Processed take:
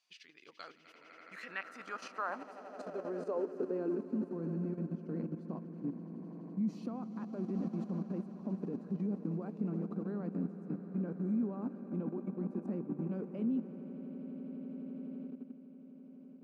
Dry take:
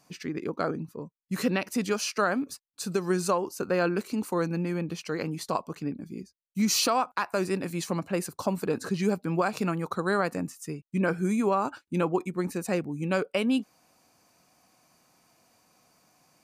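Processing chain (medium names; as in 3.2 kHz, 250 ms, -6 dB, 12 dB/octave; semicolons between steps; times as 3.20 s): echo with a slow build-up 84 ms, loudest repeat 8, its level -15.5 dB; level held to a coarse grid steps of 10 dB; band-pass sweep 3.3 kHz -> 230 Hz, 0.67–4.30 s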